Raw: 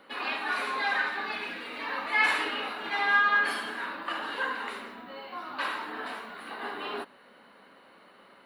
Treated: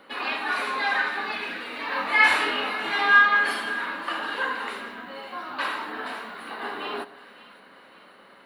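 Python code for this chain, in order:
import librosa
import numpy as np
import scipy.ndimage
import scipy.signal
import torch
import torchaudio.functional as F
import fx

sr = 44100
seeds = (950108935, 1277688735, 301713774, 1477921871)

p1 = fx.doubler(x, sr, ms=24.0, db=-2.0, at=(1.89, 3.26))
p2 = p1 + fx.echo_split(p1, sr, split_hz=1200.0, low_ms=112, high_ms=557, feedback_pct=52, wet_db=-16.0, dry=0)
y = F.gain(torch.from_numpy(p2), 3.5).numpy()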